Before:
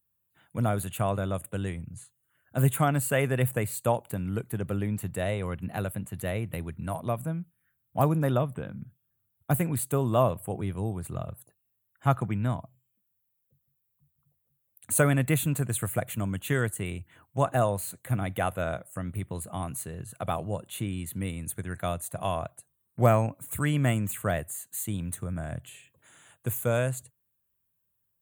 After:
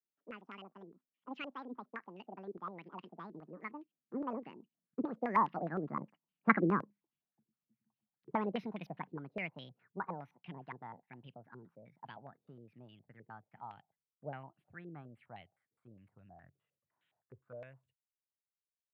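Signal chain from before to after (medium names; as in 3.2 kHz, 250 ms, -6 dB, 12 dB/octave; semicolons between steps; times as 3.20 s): gliding tape speed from 200% -> 98%; Doppler pass-by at 6.62 s, 8 m/s, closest 5.3 m; step-sequenced low-pass 9.7 Hz 420–2900 Hz; trim -5 dB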